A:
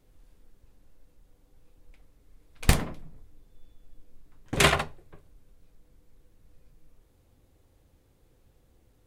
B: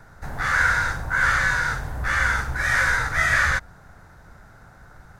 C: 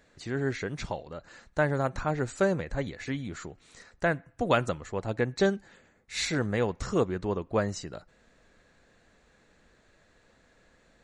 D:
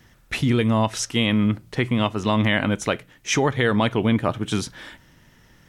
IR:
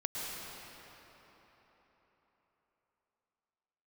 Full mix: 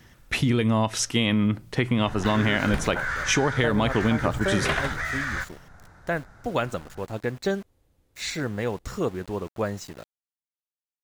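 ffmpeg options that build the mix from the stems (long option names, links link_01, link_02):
-filter_complex "[0:a]acrossover=split=3500[link_01][link_02];[link_02]acompressor=threshold=-37dB:ratio=4:attack=1:release=60[link_03];[link_01][link_03]amix=inputs=2:normalize=0,adelay=50,volume=-3.5dB[link_04];[1:a]lowpass=9100,alimiter=limit=-17dB:level=0:latency=1:release=280,adelay=1850,volume=-3dB[link_05];[2:a]aeval=exprs='val(0)*gte(abs(val(0)),0.00891)':channel_layout=same,adelay=2050,volume=-0.5dB[link_06];[3:a]volume=1dB[link_07];[link_04][link_05][link_06][link_07]amix=inputs=4:normalize=0,acompressor=threshold=-18dB:ratio=6"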